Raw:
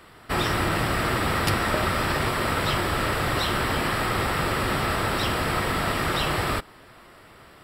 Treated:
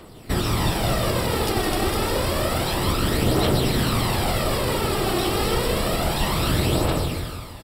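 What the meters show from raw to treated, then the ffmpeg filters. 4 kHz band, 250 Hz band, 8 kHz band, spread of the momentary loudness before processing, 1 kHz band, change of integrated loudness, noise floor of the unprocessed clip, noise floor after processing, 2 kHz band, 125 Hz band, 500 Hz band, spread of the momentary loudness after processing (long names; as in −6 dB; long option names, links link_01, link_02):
+3.0 dB, +4.5 dB, +5.5 dB, 1 LU, −0.5 dB, +2.0 dB, −50 dBFS, −38 dBFS, −3.5 dB, +5.0 dB, +4.5 dB, 3 LU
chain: -filter_complex "[0:a]asplit=2[link_01][link_02];[link_02]aecho=0:1:260|455|601.2|710.9|793.2:0.631|0.398|0.251|0.158|0.1[link_03];[link_01][link_03]amix=inputs=2:normalize=0,alimiter=limit=-17.5dB:level=0:latency=1:release=82,equalizer=frequency=1600:width_type=o:width=1.5:gain=-12,bandreject=frequency=50:width_type=h:width=6,bandreject=frequency=100:width_type=h:width=6,bandreject=frequency=150:width_type=h:width=6,asplit=2[link_04][link_05];[link_05]aecho=0:1:159|318|477|636|795|954|1113:0.531|0.292|0.161|0.0883|0.0486|0.0267|0.0147[link_06];[link_04][link_06]amix=inputs=2:normalize=0,aphaser=in_gain=1:out_gain=1:delay=2.8:decay=0.44:speed=0.29:type=triangular,volume=6dB"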